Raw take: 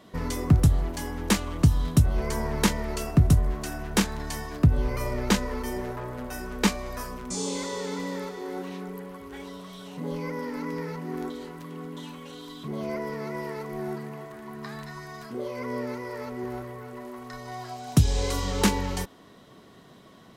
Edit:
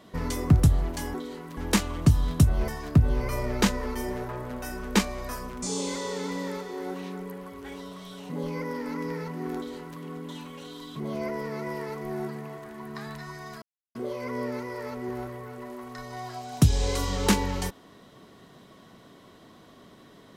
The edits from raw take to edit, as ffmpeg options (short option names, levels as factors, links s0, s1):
-filter_complex "[0:a]asplit=5[s0][s1][s2][s3][s4];[s0]atrim=end=1.142[s5];[s1]atrim=start=11.238:end=11.672[s6];[s2]atrim=start=1.138:end=2.252[s7];[s3]atrim=start=4.358:end=15.3,asetpts=PTS-STARTPTS,afade=t=out:st=10.938:d=0.004:c=hsin,apad=pad_dur=0.33[s8];[s4]atrim=start=15.3,asetpts=PTS-STARTPTS,afade=t=in:d=0.004:c=hsin[s9];[s5][s6]acrossfade=d=0.004:c1=hsin:c2=hsin[s10];[s10][s7]acrossfade=d=0.004:c1=hsin:c2=hsin[s11];[s8][s9]concat=n=2:v=0:a=1[s12];[s11][s12]acrossfade=d=0.004:c1=hsin:c2=hsin"